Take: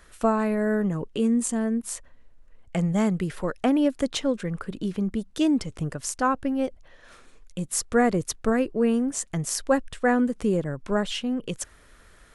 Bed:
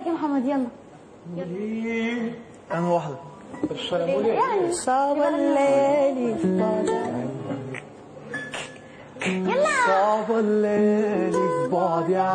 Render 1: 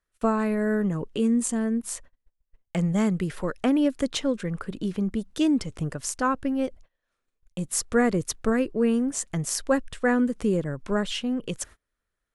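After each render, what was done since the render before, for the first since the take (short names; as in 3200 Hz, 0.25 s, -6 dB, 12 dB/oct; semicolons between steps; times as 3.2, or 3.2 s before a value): gate -43 dBFS, range -30 dB; dynamic EQ 740 Hz, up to -5 dB, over -38 dBFS, Q 2.5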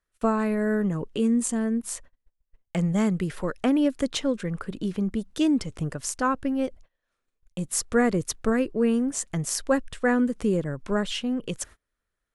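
nothing audible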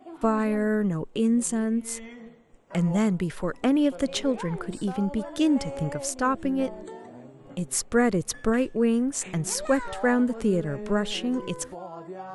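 add bed -17 dB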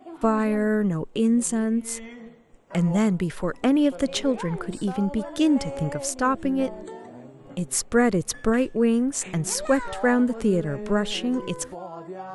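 gain +2 dB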